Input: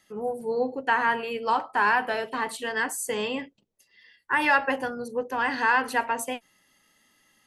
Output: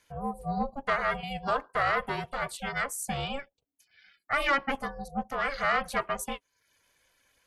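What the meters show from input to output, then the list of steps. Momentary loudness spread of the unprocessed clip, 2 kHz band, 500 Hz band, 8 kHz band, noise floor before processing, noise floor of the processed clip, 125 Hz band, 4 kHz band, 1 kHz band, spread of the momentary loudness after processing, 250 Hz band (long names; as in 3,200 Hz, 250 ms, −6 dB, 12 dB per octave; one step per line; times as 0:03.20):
9 LU, −6.0 dB, −4.5 dB, −3.5 dB, −68 dBFS, −79 dBFS, +10.5 dB, −2.0 dB, −5.0 dB, 9 LU, −3.5 dB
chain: reverb reduction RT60 0.59 s
ring modulation 280 Hz
soft clipping −15 dBFS, distortion −20 dB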